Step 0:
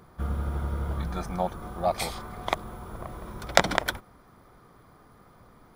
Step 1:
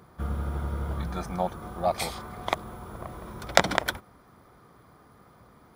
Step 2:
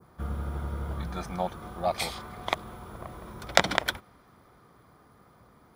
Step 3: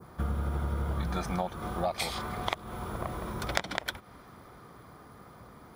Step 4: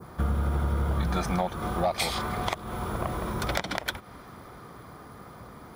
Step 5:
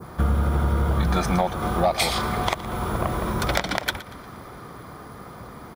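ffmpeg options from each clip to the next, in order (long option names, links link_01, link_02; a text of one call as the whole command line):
ffmpeg -i in.wav -af "highpass=52" out.wav
ffmpeg -i in.wav -af "adynamicequalizer=threshold=0.00501:dfrequency=3100:dqfactor=0.79:tfrequency=3100:tqfactor=0.79:attack=5:release=100:ratio=0.375:range=2.5:mode=boostabove:tftype=bell,volume=-2.5dB" out.wav
ffmpeg -i in.wav -af "acompressor=threshold=-34dB:ratio=8,volume=6.5dB" out.wav
ffmpeg -i in.wav -af "asoftclip=type=tanh:threshold=-21dB,volume=5.5dB" out.wav
ffmpeg -i in.wav -af "aecho=1:1:118|236|354|472:0.15|0.0613|0.0252|0.0103,volume=5.5dB" out.wav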